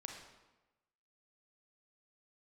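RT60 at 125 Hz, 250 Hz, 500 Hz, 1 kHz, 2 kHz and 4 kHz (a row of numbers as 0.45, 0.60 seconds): 1.1, 1.1, 1.1, 1.1, 0.95, 0.80 seconds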